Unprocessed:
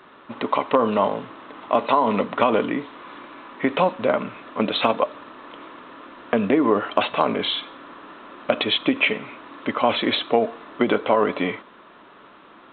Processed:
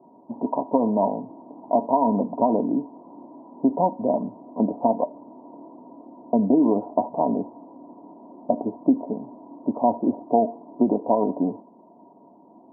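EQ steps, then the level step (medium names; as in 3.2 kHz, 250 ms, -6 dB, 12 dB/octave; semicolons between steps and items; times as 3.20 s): high-pass 110 Hz; rippled Chebyshev low-pass 980 Hz, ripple 9 dB; +4.0 dB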